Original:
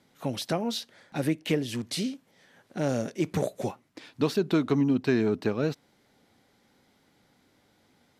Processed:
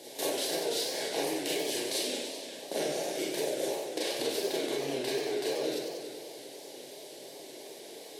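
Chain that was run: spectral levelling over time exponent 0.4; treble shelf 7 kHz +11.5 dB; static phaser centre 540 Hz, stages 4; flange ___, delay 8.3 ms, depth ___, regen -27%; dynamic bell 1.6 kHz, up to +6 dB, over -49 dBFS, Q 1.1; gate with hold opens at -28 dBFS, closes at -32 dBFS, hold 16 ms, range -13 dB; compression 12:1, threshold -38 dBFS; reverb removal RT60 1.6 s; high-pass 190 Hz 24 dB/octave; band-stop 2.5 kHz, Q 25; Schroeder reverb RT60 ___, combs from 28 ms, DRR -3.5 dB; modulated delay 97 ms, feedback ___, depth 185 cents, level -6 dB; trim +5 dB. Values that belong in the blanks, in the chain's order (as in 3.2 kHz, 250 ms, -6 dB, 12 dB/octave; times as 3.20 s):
0.48 Hz, 7.1 ms, 0.3 s, 77%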